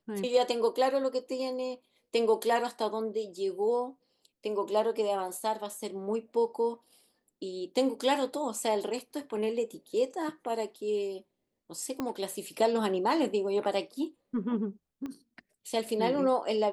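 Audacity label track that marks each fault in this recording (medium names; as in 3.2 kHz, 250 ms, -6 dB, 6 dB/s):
12.000000	12.000000	pop -19 dBFS
15.060000	15.060000	pop -27 dBFS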